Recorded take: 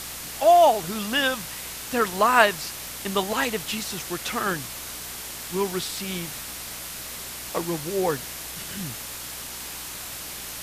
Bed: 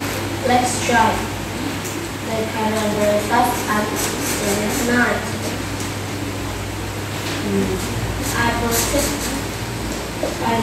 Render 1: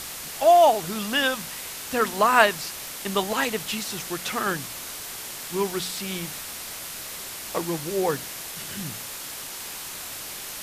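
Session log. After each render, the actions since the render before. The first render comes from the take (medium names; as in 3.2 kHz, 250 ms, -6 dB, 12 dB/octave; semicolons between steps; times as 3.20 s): de-hum 60 Hz, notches 5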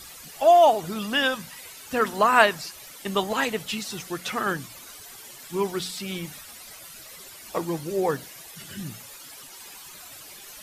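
noise reduction 13 dB, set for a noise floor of -37 dBFS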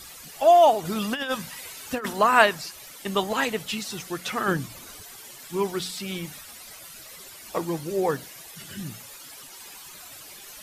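0.85–2.13 s: compressor with a negative ratio -26 dBFS, ratio -0.5; 4.48–5.03 s: bass shelf 470 Hz +7.5 dB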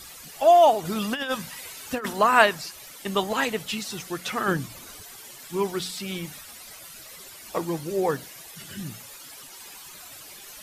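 no audible change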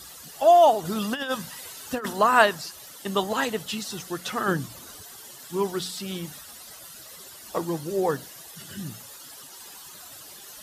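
high-pass 45 Hz; peaking EQ 2.3 kHz -8.5 dB 0.34 oct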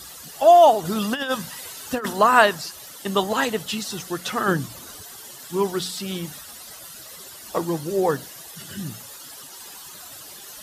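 trim +3.5 dB; peak limiter -2 dBFS, peak gain reduction 2.5 dB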